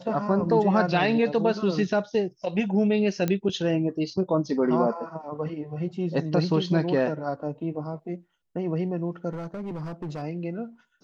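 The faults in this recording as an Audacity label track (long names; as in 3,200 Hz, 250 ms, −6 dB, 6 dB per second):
3.280000	3.280000	click −13 dBFS
9.330000	10.230000	clipping −29.5 dBFS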